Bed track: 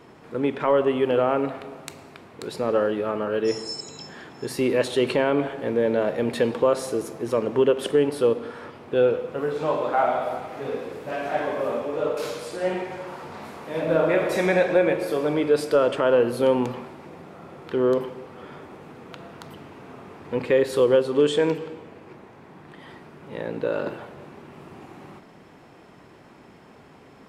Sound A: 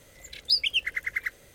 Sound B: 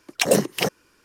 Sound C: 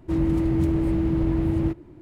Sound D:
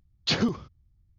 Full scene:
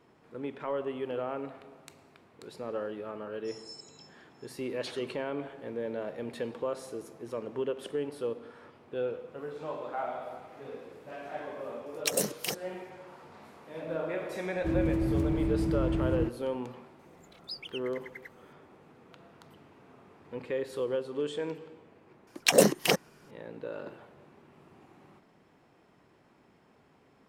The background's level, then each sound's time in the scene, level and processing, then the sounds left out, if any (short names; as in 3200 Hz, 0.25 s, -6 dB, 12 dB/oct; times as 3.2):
bed track -13.5 dB
4.56 add D -17 dB + HPF 470 Hz
11.86 add B -14 dB + high shelf 4300 Hz +12 dB
14.56 add C -6.5 dB
16.99 add A -17.5 dB
22.27 add B -2 dB + bell 100 Hz -8.5 dB